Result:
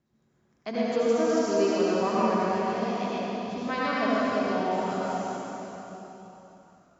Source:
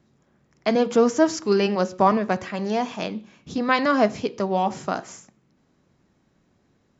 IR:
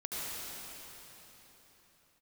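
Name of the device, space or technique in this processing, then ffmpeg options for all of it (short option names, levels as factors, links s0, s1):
cathedral: -filter_complex "[1:a]atrim=start_sample=2205[s0];[0:a][s0]afir=irnorm=-1:irlink=0,volume=0.376"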